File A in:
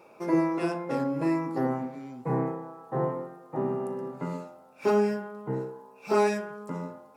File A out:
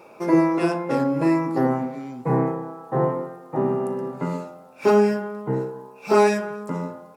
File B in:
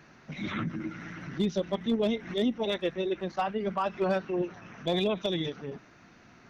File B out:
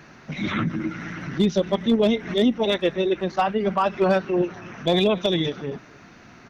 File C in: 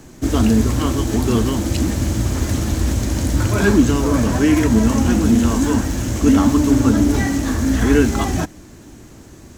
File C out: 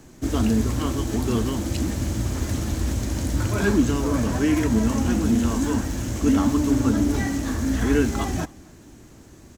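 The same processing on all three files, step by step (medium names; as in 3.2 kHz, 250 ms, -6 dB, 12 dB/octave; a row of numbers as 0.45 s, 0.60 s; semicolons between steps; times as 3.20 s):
echo from a far wall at 45 m, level -25 dB; normalise loudness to -23 LUFS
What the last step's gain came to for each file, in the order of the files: +7.0 dB, +8.0 dB, -6.0 dB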